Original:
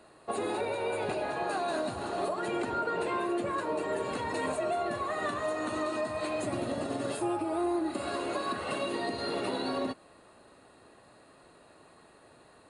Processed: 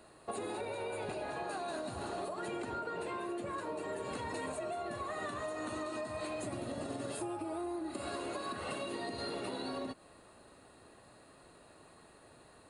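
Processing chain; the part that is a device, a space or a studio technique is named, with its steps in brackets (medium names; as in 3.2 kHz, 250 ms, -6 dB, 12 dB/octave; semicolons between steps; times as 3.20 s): ASMR close-microphone chain (bass shelf 120 Hz +6.5 dB; compression, threshold -34 dBFS, peak gain reduction 8 dB; treble shelf 6.3 kHz +6 dB); trim -2.5 dB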